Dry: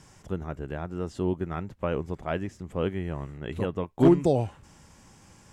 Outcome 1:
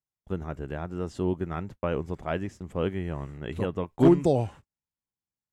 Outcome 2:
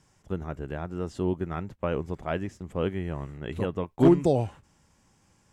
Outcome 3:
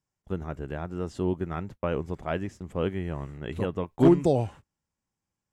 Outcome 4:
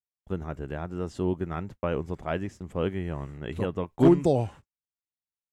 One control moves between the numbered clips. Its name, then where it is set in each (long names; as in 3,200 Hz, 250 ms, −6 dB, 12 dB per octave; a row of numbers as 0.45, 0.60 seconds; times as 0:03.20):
noise gate, range: −46, −10, −33, −58 decibels